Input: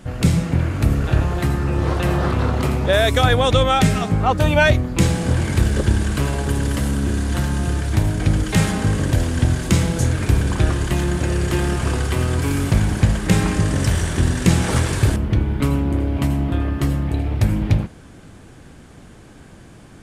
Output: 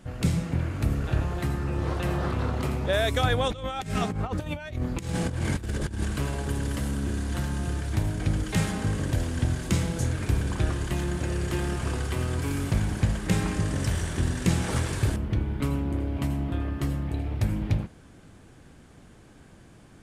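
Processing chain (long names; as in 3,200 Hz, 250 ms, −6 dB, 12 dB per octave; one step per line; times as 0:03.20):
0:03.48–0:06.05: compressor whose output falls as the input rises −20 dBFS, ratio −0.5
level −8.5 dB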